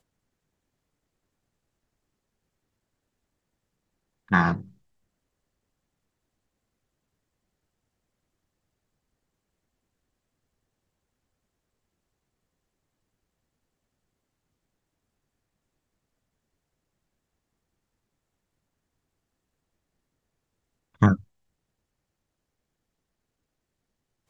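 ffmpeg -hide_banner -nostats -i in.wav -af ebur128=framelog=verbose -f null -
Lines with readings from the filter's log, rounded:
Integrated loudness:
  I:         -24.1 LUFS
  Threshold: -35.5 LUFS
Loudness range:
  LRA:         0.5 LU
  Threshold: -51.8 LUFS
  LRA low:   -31.9 LUFS
  LRA high:  -31.4 LUFS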